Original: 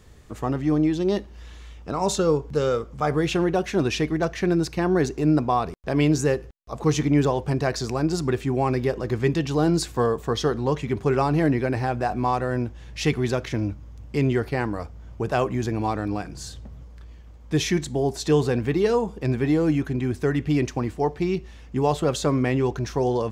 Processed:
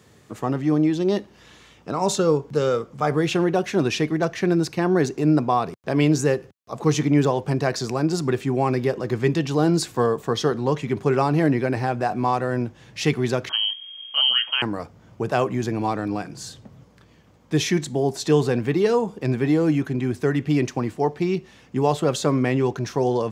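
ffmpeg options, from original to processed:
-filter_complex "[0:a]asettb=1/sr,asplit=3[s0][s1][s2];[s0]atrim=end=13.494[s3];[s1]atrim=start=13.49:end=14.62,asetpts=PTS-STARTPTS,afade=t=in:d=0.004:c=qsin,afade=t=out:st=1.126:d=0.004:c=qsin,lowpass=f=2800:t=q:w=0.5098,lowpass=f=2800:t=q:w=0.6013,lowpass=f=2800:t=q:w=0.9,lowpass=f=2800:t=q:w=2.563,afreqshift=-3300[s4];[s2]atrim=start=14.616[s5];[s3][s4]acrossfade=d=0.004:c1=hsin:c2=qsin[s6];[s6][s5]acrossfade=d=0.004:c1=qsin:c2=hsin,highpass=f=110:w=0.5412,highpass=f=110:w=1.3066,volume=1.19"

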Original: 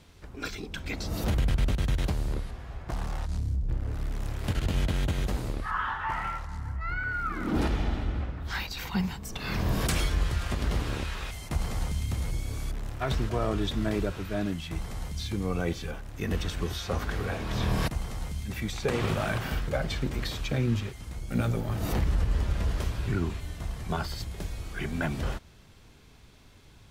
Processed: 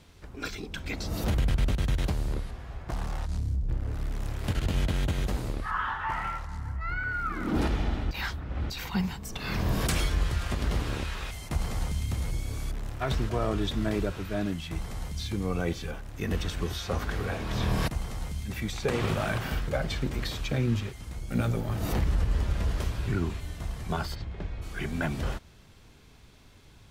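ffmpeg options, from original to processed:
-filter_complex "[0:a]asplit=3[s0][s1][s2];[s0]afade=t=out:st=24.14:d=0.02[s3];[s1]lowpass=2600,afade=t=in:st=24.14:d=0.02,afade=t=out:st=24.61:d=0.02[s4];[s2]afade=t=in:st=24.61:d=0.02[s5];[s3][s4][s5]amix=inputs=3:normalize=0,asplit=3[s6][s7][s8];[s6]atrim=end=8.112[s9];[s7]atrim=start=8.108:end=8.702,asetpts=PTS-STARTPTS,areverse[s10];[s8]atrim=start=8.698[s11];[s9][s10]acrossfade=d=0.004:c1=hsin:c2=hsin[s12];[s12][s11]acrossfade=d=0.004:c1=hsin:c2=hsin"

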